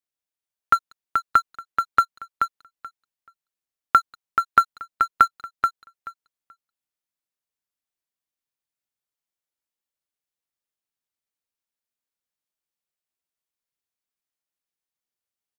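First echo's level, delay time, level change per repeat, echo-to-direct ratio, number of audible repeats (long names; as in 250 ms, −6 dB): −5.5 dB, 431 ms, −16.0 dB, −5.5 dB, 2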